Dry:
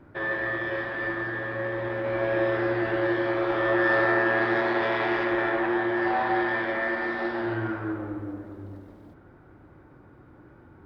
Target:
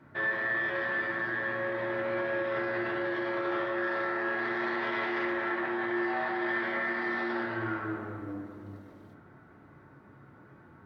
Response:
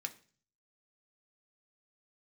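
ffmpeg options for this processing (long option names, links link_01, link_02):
-filter_complex "[0:a]alimiter=limit=-23dB:level=0:latency=1:release=10[link_01];[1:a]atrim=start_sample=2205,asetrate=34398,aresample=44100[link_02];[link_01][link_02]afir=irnorm=-1:irlink=0"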